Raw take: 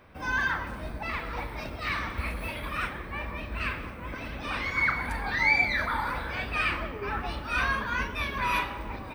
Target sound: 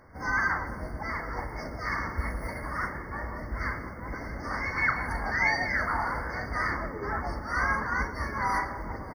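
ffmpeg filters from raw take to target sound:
ffmpeg -i in.wav -filter_complex "[0:a]bandreject=frequency=199.1:width_type=h:width=4,bandreject=frequency=398.2:width_type=h:width=4,bandreject=frequency=597.3:width_type=h:width=4,bandreject=frequency=796.4:width_type=h:width=4,bandreject=frequency=995.5:width_type=h:width=4,bandreject=frequency=1194.6:width_type=h:width=4,asplit=3[link_01][link_02][link_03];[link_02]asetrate=35002,aresample=44100,atempo=1.25992,volume=-8dB[link_04];[link_03]asetrate=55563,aresample=44100,atempo=0.793701,volume=-12dB[link_05];[link_01][link_04][link_05]amix=inputs=3:normalize=0,afftfilt=real='re*eq(mod(floor(b*sr/1024/2200),2),0)':imag='im*eq(mod(floor(b*sr/1024/2200),2),0)':win_size=1024:overlap=0.75" out.wav

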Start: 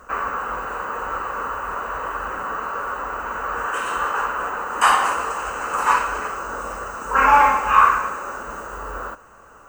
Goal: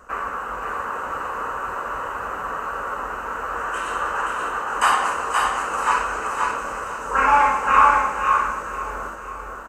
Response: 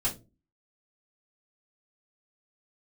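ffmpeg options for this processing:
-filter_complex "[0:a]asplit=2[link_01][link_02];[link_02]aecho=0:1:525:0.668[link_03];[link_01][link_03]amix=inputs=2:normalize=0,aresample=32000,aresample=44100,asplit=2[link_04][link_05];[link_05]aecho=0:1:501|1002|1503|2004|2505|3006:0.188|0.105|0.0591|0.0331|0.0185|0.0104[link_06];[link_04][link_06]amix=inputs=2:normalize=0,volume=-2.5dB"

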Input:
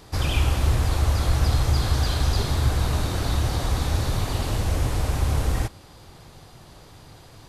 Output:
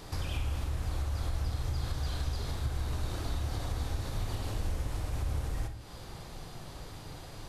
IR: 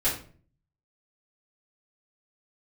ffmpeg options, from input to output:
-filter_complex "[0:a]acompressor=threshold=-35dB:ratio=5,asplit=2[link_01][link_02];[1:a]atrim=start_sample=2205,adelay=30[link_03];[link_02][link_03]afir=irnorm=-1:irlink=0,volume=-17dB[link_04];[link_01][link_04]amix=inputs=2:normalize=0"

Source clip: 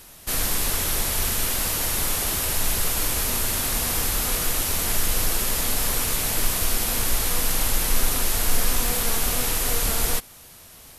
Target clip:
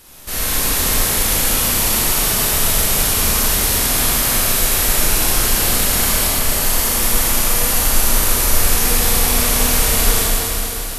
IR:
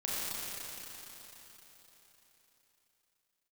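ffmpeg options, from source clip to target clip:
-filter_complex "[0:a]asettb=1/sr,asplit=3[link_01][link_02][link_03];[link_01]atrim=end=6.284[link_04];[link_02]atrim=start=6.28:end=8.62,asetpts=PTS-STARTPTS,afade=type=in:duration=0.004:curve=qsin,afade=type=out:start_time=2.336:duration=0.004:curve=qsin,acrossover=split=160|3700[link_05][link_06][link_07];[link_06]adelay=130[link_08];[link_07]adelay=180[link_09];[link_05][link_08][link_09]amix=inputs=3:normalize=0,atrim=end_sample=103194[link_10];[link_03]atrim=start=8.616[link_11];[link_04][link_10]acrossfade=duration=0.004:curve1=hsin:curve2=qsin[link_12];[link_12][link_11]acrossfade=duration=0.004:curve1=qsin:curve2=hsin[link_13];[1:a]atrim=start_sample=2205[link_14];[link_13][link_14]afir=irnorm=-1:irlink=0,volume=2dB"

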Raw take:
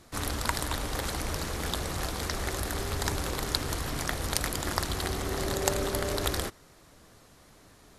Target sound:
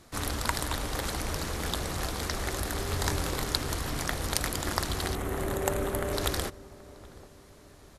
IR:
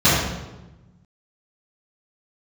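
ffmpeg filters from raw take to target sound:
-filter_complex "[0:a]asettb=1/sr,asplit=3[link_01][link_02][link_03];[link_01]atrim=end=2.864[link_04];[link_02]atrim=start=2.86:end=3.43,asetpts=PTS-STARTPTS,afade=type=in:duration=0.004:curve=qsin,afade=type=out:start_time=0.566:duration=0.004:curve=qsin,asplit=2[link_05][link_06];[link_06]adelay=23,volume=-7dB[link_07];[link_05][link_07]amix=inputs=2:normalize=0,atrim=end_sample=25137[link_08];[link_03]atrim=start=3.426[link_09];[link_04][link_08]acrossfade=duration=0.004:curve1=hsin:curve2=qsin[link_10];[link_10][link_09]acrossfade=duration=0.004:curve1=qsin:curve2=hsin,asettb=1/sr,asplit=3[link_11][link_12][link_13];[link_11]atrim=end=5.154[link_14];[link_12]atrim=start=5.15:end=6.13,asetpts=PTS-STARTPTS,afade=type=in:duration=0.004:curve=qsin,afade=type=out:start_time=0.976:duration=0.004:curve=qsin,equalizer=frequency=4900:width=1.3:gain=-14[link_15];[link_13]atrim=start=6.126[link_16];[link_14][link_15]acrossfade=duration=0.004:curve1=hsin:curve2=qsin[link_17];[link_17][link_16]acrossfade=duration=0.004:curve1=qsin:curve2=hsin,asplit=2[link_18][link_19];[link_19]adelay=778,lowpass=frequency=1000:poles=1,volume=-18.5dB,asplit=2[link_20][link_21];[link_21]adelay=778,lowpass=frequency=1000:poles=1,volume=0.48,asplit=2[link_22][link_23];[link_23]adelay=778,lowpass=frequency=1000:poles=1,volume=0.48,asplit=2[link_24][link_25];[link_25]adelay=778,lowpass=frequency=1000:poles=1,volume=0.48[link_26];[link_18][link_20][link_22][link_24][link_26]amix=inputs=5:normalize=0"

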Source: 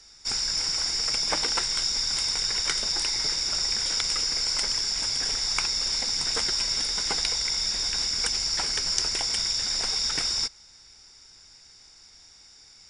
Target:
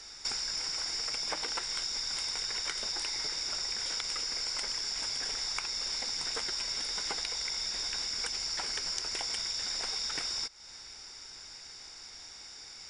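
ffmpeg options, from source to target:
ffmpeg -i in.wav -af "bass=frequency=250:gain=-7,treble=frequency=4000:gain=-4,acompressor=threshold=-40dB:ratio=6,volume=7dB" out.wav

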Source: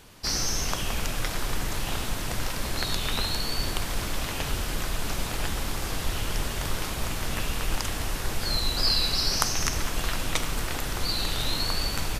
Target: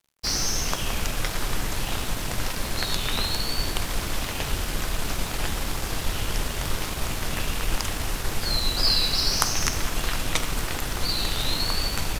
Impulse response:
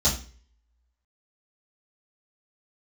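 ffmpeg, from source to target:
-af "bandreject=frequency=56.36:width_type=h:width=4,bandreject=frequency=112.72:width_type=h:width=4,bandreject=frequency=169.08:width_type=h:width=4,bandreject=frequency=225.44:width_type=h:width=4,bandreject=frequency=281.8:width_type=h:width=4,bandreject=frequency=338.16:width_type=h:width=4,bandreject=frequency=394.52:width_type=h:width=4,bandreject=frequency=450.88:width_type=h:width=4,bandreject=frequency=507.24:width_type=h:width=4,bandreject=frequency=563.6:width_type=h:width=4,bandreject=frequency=619.96:width_type=h:width=4,bandreject=frequency=676.32:width_type=h:width=4,bandreject=frequency=732.68:width_type=h:width=4,bandreject=frequency=789.04:width_type=h:width=4,bandreject=frequency=845.4:width_type=h:width=4,bandreject=frequency=901.76:width_type=h:width=4,bandreject=frequency=958.12:width_type=h:width=4,bandreject=frequency=1014.48:width_type=h:width=4,bandreject=frequency=1070.84:width_type=h:width=4,bandreject=frequency=1127.2:width_type=h:width=4,bandreject=frequency=1183.56:width_type=h:width=4,bandreject=frequency=1239.92:width_type=h:width=4,bandreject=frequency=1296.28:width_type=h:width=4,bandreject=frequency=1352.64:width_type=h:width=4,bandreject=frequency=1409:width_type=h:width=4,bandreject=frequency=1465.36:width_type=h:width=4,bandreject=frequency=1521.72:width_type=h:width=4,bandreject=frequency=1578.08:width_type=h:width=4,bandreject=frequency=1634.44:width_type=h:width=4,bandreject=frequency=1690.8:width_type=h:width=4,bandreject=frequency=1747.16:width_type=h:width=4,bandreject=frequency=1803.52:width_type=h:width=4,aeval=exprs='sgn(val(0))*max(abs(val(0))-0.00631,0)':channel_layout=same,volume=3dB"

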